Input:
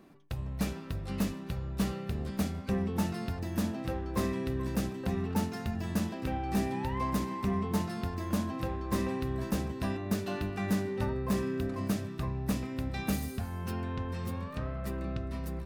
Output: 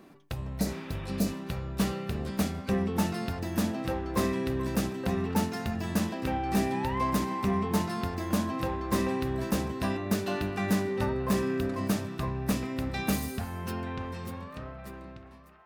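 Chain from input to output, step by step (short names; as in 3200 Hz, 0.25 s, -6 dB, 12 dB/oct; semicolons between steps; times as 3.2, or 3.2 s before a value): ending faded out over 2.32 s; low shelf 150 Hz -6.5 dB; band-limited delay 0.923 s, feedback 45%, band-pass 1300 Hz, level -14 dB; spectral repair 0.63–1.26, 790–3800 Hz; gain +5 dB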